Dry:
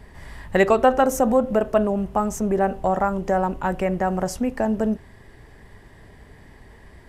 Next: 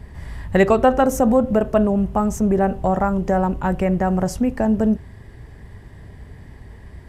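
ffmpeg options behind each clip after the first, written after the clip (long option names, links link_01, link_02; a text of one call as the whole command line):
ffmpeg -i in.wav -af "equalizer=frequency=84:width=0.45:gain=10.5" out.wav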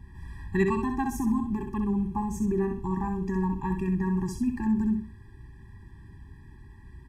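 ffmpeg -i in.wav -af "aecho=1:1:64|128|192:0.501|0.125|0.0313,afftfilt=real='re*eq(mod(floor(b*sr/1024/390),2),0)':imag='im*eq(mod(floor(b*sr/1024/390),2),0)':win_size=1024:overlap=0.75,volume=-8.5dB" out.wav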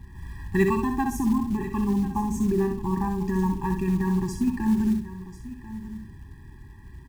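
ffmpeg -i in.wav -af "acrusher=bits=7:mode=log:mix=0:aa=0.000001,aecho=1:1:1042:0.178,volume=3dB" out.wav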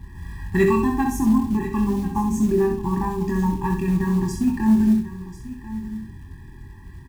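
ffmpeg -i in.wav -filter_complex "[0:a]asoftclip=type=tanh:threshold=-10.5dB,asplit=2[link_01][link_02];[link_02]adelay=23,volume=-5dB[link_03];[link_01][link_03]amix=inputs=2:normalize=0,volume=3dB" out.wav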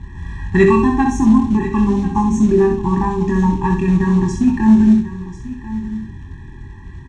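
ffmpeg -i in.wav -af "lowpass=frequency=6900:width=0.5412,lowpass=frequency=6900:width=1.3066,bandreject=frequency=4800:width=5.2,volume=6.5dB" out.wav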